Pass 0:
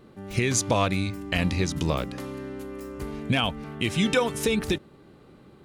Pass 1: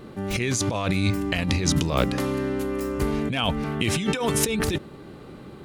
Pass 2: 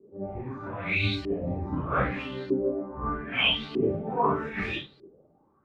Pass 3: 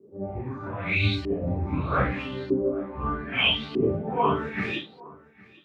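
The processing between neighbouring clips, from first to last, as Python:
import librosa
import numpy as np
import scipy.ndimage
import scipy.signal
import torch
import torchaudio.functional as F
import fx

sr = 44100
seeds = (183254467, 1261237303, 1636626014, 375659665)

y1 = fx.over_compress(x, sr, threshold_db=-29.0, ratio=-1.0)
y1 = y1 * librosa.db_to_amplitude(6.0)
y2 = fx.phase_scramble(y1, sr, seeds[0], window_ms=200)
y2 = fx.filter_lfo_lowpass(y2, sr, shape='saw_up', hz=0.8, low_hz=370.0, high_hz=4500.0, q=5.8)
y2 = fx.band_widen(y2, sr, depth_pct=100)
y2 = y2 * librosa.db_to_amplitude(-8.0)
y3 = fx.filter_sweep_highpass(y2, sr, from_hz=69.0, to_hz=1800.0, start_s=4.48, end_s=5.41, q=1.6)
y3 = y3 + 10.0 ** (-23.0 / 20.0) * np.pad(y3, (int(812 * sr / 1000.0), 0))[:len(y3)]
y3 = y3 * librosa.db_to_amplitude(1.5)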